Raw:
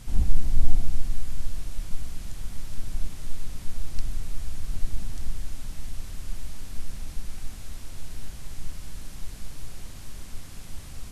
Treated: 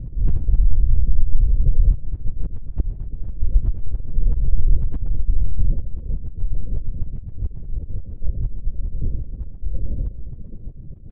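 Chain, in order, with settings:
spectral magnitudes quantised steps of 15 dB
elliptic low-pass filter 540 Hz, stop band 50 dB
low-shelf EQ 400 Hz +7.5 dB
volume swells 400 ms
downward compressor 2.5 to 1, threshold −12 dBFS, peak gain reduction 9 dB
volume swells 133 ms
brickwall limiter −15.5 dBFS, peak gain reduction 10 dB
repeating echo 132 ms, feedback 36%, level −9 dB
linear-prediction vocoder at 8 kHz whisper
dynamic equaliser 230 Hz, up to −5 dB, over −49 dBFS, Q 1.1
level +9 dB

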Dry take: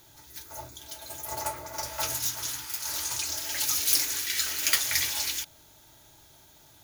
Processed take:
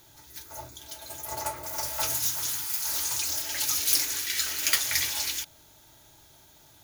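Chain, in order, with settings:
0:01.63–0:03.42: spike at every zero crossing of −32 dBFS

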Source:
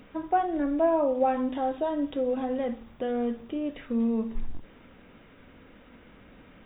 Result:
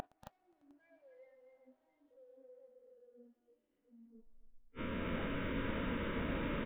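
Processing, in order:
peak hold with a rise ahead of every peak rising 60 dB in 1.71 s
high-shelf EQ 3,200 Hz −6 dB
mains-hum notches 50/100/150/200/250/300 Hz
soft clipping −28 dBFS, distortion −8 dB
gate with flip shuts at −37 dBFS, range −39 dB
hard clipping −35.5 dBFS, distortion −30 dB
multi-tap delay 116/234/270/527/614/708 ms −6/−6.5/−5/−19.5/−16.5/−10.5 dB
noise reduction from a noise print of the clip's start 20 dB
level +9.5 dB

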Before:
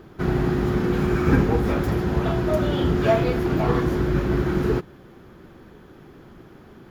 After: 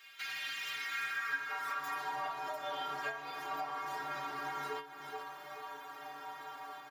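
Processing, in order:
automatic gain control gain up to 3 dB
on a send: repeating echo 430 ms, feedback 33%, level −18 dB
on the sum: high-pass filter sweep 2,500 Hz → 820 Hz, 0:00.65–0:02.25
downward compressor 4 to 1, threshold −40 dBFS, peak gain reduction 24.5 dB
parametric band 470 Hz −5.5 dB 1.6 octaves
stiff-string resonator 140 Hz, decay 0.39 s, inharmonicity 0.008
level +15 dB

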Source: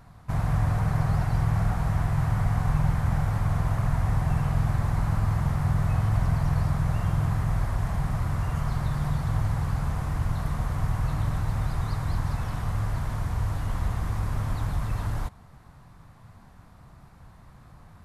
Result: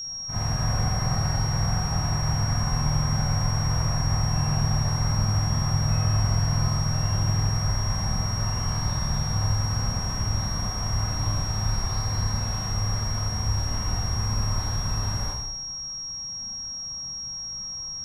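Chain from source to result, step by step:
four-comb reverb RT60 0.89 s, combs from 30 ms, DRR −8.5 dB
steady tone 5,600 Hz −24 dBFS
level −7.5 dB

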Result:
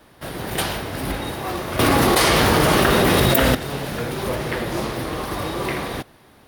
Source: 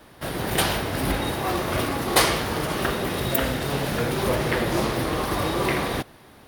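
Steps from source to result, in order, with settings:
0:01.79–0:03.55: envelope flattener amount 100%
level −1.5 dB

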